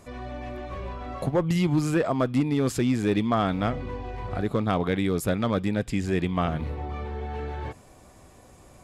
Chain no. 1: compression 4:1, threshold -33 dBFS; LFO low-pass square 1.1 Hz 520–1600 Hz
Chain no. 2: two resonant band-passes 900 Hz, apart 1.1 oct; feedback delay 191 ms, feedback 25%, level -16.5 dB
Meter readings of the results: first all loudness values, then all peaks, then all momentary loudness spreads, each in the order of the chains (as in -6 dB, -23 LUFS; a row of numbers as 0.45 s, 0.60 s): -34.5 LUFS, -38.5 LUFS; -19.5 dBFS, -17.5 dBFS; 8 LU, 15 LU